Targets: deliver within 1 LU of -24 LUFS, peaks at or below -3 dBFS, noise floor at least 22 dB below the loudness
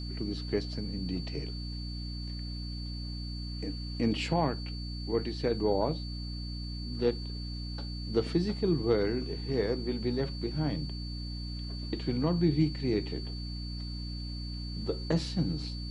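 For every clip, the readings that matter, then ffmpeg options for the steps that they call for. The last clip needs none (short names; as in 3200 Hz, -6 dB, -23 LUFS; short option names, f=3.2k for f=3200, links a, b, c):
hum 60 Hz; harmonics up to 300 Hz; hum level -35 dBFS; steady tone 4500 Hz; tone level -44 dBFS; loudness -33.0 LUFS; peak -14.5 dBFS; loudness target -24.0 LUFS
-> -af "bandreject=f=60:t=h:w=4,bandreject=f=120:t=h:w=4,bandreject=f=180:t=h:w=4,bandreject=f=240:t=h:w=4,bandreject=f=300:t=h:w=4"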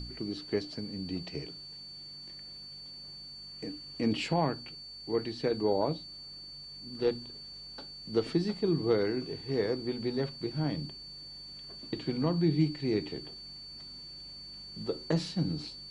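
hum none; steady tone 4500 Hz; tone level -44 dBFS
-> -af "bandreject=f=4.5k:w=30"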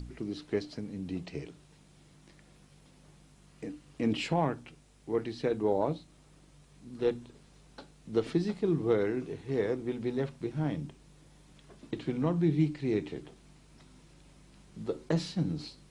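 steady tone none; loudness -33.0 LUFS; peak -16.0 dBFS; loudness target -24.0 LUFS
-> -af "volume=9dB"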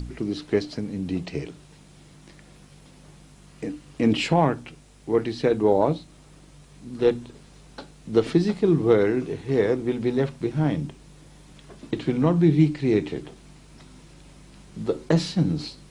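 loudness -24.0 LUFS; peak -7.0 dBFS; noise floor -51 dBFS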